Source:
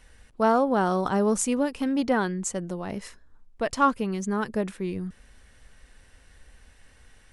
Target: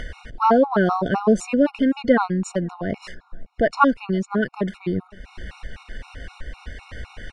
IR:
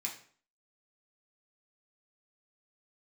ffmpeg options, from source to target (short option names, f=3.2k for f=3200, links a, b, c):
-filter_complex "[0:a]lowpass=3.6k,acompressor=mode=upward:threshold=-27dB:ratio=2.5,asplit=2[a][b];[b]adelay=519,volume=-27dB,highshelf=f=4k:g=-11.7[c];[a][c]amix=inputs=2:normalize=0,afftfilt=real='re*gt(sin(2*PI*3.9*pts/sr)*(1-2*mod(floor(b*sr/1024/730),2)),0)':imag='im*gt(sin(2*PI*3.9*pts/sr)*(1-2*mod(floor(b*sr/1024/730),2)),0)':win_size=1024:overlap=0.75,volume=8.5dB"